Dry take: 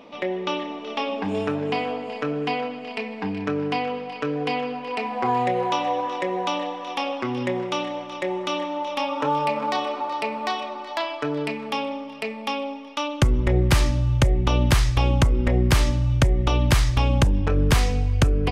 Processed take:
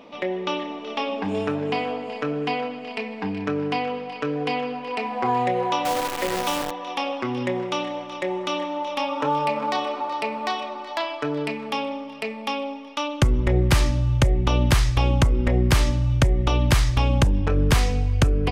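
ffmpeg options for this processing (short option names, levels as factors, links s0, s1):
-filter_complex "[0:a]asettb=1/sr,asplit=3[s0][s1][s2];[s0]atrim=end=5.854[s3];[s1]atrim=start=5.85:end=6.71,asetpts=PTS-STARTPTS,afade=t=in:d=0.004:c=qsin,afade=t=out:st=0.856:d=0.004:c=qsin,acrusher=bits=5:dc=4:mix=0:aa=0.000001[s4];[s2]atrim=start=6.706[s5];[s3][s4]acrossfade=d=0.004:c1=hsin:c2=qsin[s6];[s6][s5]acrossfade=d=0.004:c1=qsin:c2=hsin"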